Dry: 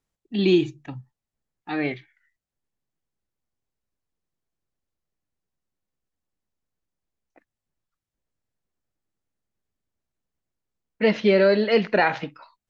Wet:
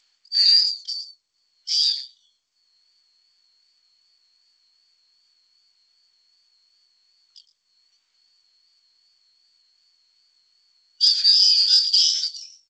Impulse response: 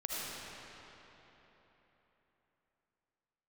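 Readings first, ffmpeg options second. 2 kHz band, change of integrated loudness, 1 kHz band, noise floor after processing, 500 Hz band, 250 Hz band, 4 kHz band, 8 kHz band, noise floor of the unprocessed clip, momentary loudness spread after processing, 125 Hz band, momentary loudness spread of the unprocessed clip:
under -15 dB, +5.0 dB, under -35 dB, -71 dBFS, under -40 dB, under -40 dB, +20.0 dB, no reading, under -85 dBFS, 15 LU, under -40 dB, 20 LU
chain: -filter_complex "[0:a]afftfilt=real='real(if(lt(b,272),68*(eq(floor(b/68),0)*3+eq(floor(b/68),1)*2+eq(floor(b/68),2)*1+eq(floor(b/68),3)*0)+mod(b,68),b),0)':imag='imag(if(lt(b,272),68*(eq(floor(b/68),0)*3+eq(floor(b/68),1)*2+eq(floor(b/68),2)*1+eq(floor(b/68),3)*0)+mod(b,68),b),0)':win_size=2048:overlap=0.75,acrossover=split=3000[s0][s1];[s0]acompressor=mode=upward:threshold=0.00398:ratio=2.5[s2];[s1]aecho=1:1:111:0.282[s3];[s2][s3]amix=inputs=2:normalize=0,acompressor=threshold=0.112:ratio=4,highshelf=f=4300:g=10,flanger=delay=18.5:depth=6.4:speed=2.6,aderivative,volume=2.24" -ar 16000 -c:a g722

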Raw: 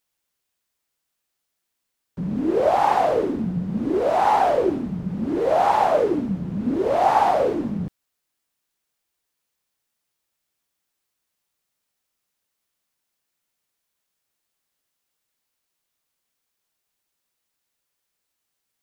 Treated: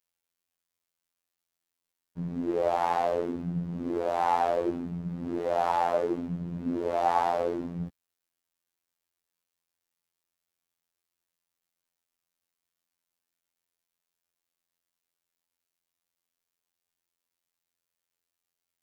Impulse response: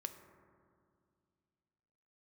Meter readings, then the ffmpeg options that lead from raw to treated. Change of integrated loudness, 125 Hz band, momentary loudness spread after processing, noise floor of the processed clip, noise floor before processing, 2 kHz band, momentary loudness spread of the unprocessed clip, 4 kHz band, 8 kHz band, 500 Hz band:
-8.0 dB, -6.0 dB, 9 LU, under -85 dBFS, -79 dBFS, -8.0 dB, 10 LU, -8.0 dB, no reading, -8.0 dB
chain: -af "afftfilt=real='hypot(re,im)*cos(PI*b)':imag='0':win_size=2048:overlap=0.75,volume=0.596"

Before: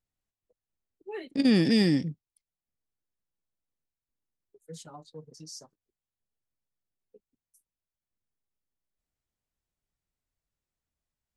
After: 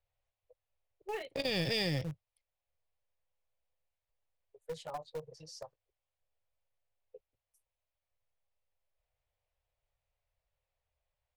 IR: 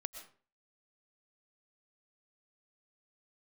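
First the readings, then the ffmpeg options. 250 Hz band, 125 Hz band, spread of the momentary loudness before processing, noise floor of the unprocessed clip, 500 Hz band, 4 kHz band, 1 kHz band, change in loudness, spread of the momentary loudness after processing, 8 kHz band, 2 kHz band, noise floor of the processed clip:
-17.0 dB, -7.0 dB, 22 LU, under -85 dBFS, -4.5 dB, -2.0 dB, +2.5 dB, -12.0 dB, 20 LU, -6.0 dB, -2.5 dB, under -85 dBFS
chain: -filter_complex "[0:a]firequalizer=gain_entry='entry(110,0);entry(230,-26);entry(520,6);entry(1400,-4);entry(2400,1);entry(6300,-14)':delay=0.05:min_phase=1,acrossover=split=210|3000[s0][s1][s2];[s1]acompressor=threshold=0.00891:ratio=6[s3];[s0][s3][s2]amix=inputs=3:normalize=0,asplit=2[s4][s5];[s5]acrusher=bits=4:dc=4:mix=0:aa=0.000001,volume=0.316[s6];[s4][s6]amix=inputs=2:normalize=0,volume=1.58"

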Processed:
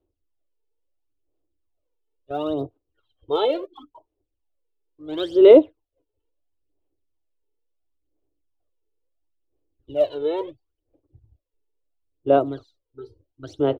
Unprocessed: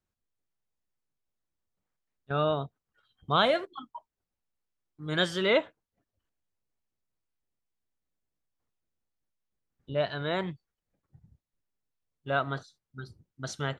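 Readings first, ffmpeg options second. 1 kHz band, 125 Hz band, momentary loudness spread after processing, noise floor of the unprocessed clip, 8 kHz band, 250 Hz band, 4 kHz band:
+2.0 dB, no reading, 23 LU, under -85 dBFS, under -10 dB, +11.5 dB, -3.0 dB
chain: -af "firequalizer=gain_entry='entry(110,0);entry(190,-25);entry(290,12);entry(810,-1);entry(1700,-17);entry(2800,-3);entry(6300,-16)':delay=0.05:min_phase=1,aphaser=in_gain=1:out_gain=1:delay=2.3:decay=0.74:speed=0.73:type=sinusoidal,volume=0.891"

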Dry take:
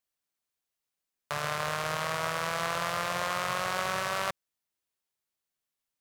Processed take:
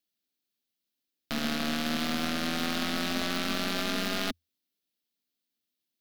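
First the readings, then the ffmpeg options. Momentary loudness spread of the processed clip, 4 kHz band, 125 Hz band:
3 LU, +5.0 dB, 0.0 dB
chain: -af "afreqshift=82,aeval=exprs='0.141*(cos(1*acos(clip(val(0)/0.141,-1,1)))-cos(1*PI/2))+0.00891*(cos(4*acos(clip(val(0)/0.141,-1,1)))-cos(4*PI/2))+0.0112*(cos(8*acos(clip(val(0)/0.141,-1,1)))-cos(8*PI/2))':c=same,equalizer=f=125:t=o:w=1:g=-8,equalizer=f=250:t=o:w=1:g=9,equalizer=f=500:t=o:w=1:g=-3,equalizer=f=1000:t=o:w=1:g=-12,equalizer=f=2000:t=o:w=1:g=-4,equalizer=f=4000:t=o:w=1:g=5,equalizer=f=8000:t=o:w=1:g=-8,volume=1.5"

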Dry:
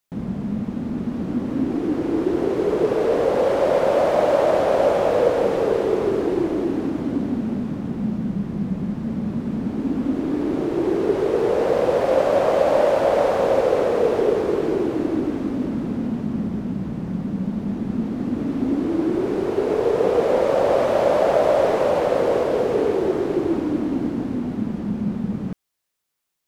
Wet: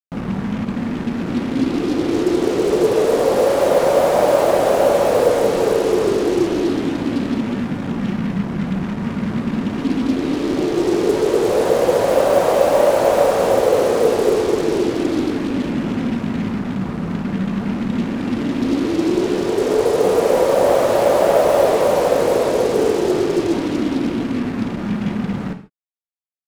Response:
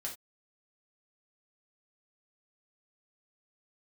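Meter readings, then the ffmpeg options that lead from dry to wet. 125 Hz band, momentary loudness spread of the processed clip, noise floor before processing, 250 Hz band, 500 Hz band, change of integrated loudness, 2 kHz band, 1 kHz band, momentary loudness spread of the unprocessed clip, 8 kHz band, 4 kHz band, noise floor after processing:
+3.5 dB, 8 LU, -31 dBFS, +3.5 dB, +3.5 dB, +3.5 dB, +5.0 dB, +4.0 dB, 8 LU, no reading, +8.5 dB, -27 dBFS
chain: -filter_complex "[0:a]acrusher=bits=4:mix=0:aa=0.5,asplit=2[s0][s1];[1:a]atrim=start_sample=2205,asetrate=27342,aresample=44100[s2];[s1][s2]afir=irnorm=-1:irlink=0,volume=0.631[s3];[s0][s3]amix=inputs=2:normalize=0,volume=0.891"

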